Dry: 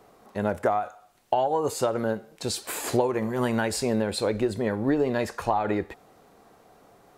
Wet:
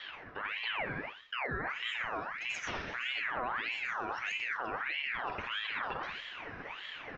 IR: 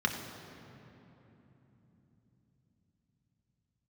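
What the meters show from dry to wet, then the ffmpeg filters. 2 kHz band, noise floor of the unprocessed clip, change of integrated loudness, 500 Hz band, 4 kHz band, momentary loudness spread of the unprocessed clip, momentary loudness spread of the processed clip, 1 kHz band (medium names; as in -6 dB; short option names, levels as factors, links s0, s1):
+3.0 dB, -57 dBFS, -9.5 dB, -19.5 dB, -1.5 dB, 6 LU, 8 LU, -9.0 dB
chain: -filter_complex "[0:a]acrossover=split=340[s0][s1];[s1]acompressor=threshold=0.0224:ratio=2.5[s2];[s0][s2]amix=inputs=2:normalize=0,acrossover=split=3500[s3][s4];[s4]adelay=130[s5];[s3][s5]amix=inputs=2:normalize=0,areverse,acompressor=threshold=0.01:ratio=16,areverse[s6];[1:a]atrim=start_sample=2205,afade=t=out:st=0.19:d=0.01,atrim=end_sample=8820,asetrate=22932,aresample=44100[s7];[s6][s7]afir=irnorm=-1:irlink=0,aresample=11025,aresample=44100,alimiter=level_in=1.19:limit=0.0631:level=0:latency=1:release=54,volume=0.841,aeval=exprs='val(0)*sin(2*PI*1700*n/s+1700*0.5/1.6*sin(2*PI*1.6*n/s))':c=same"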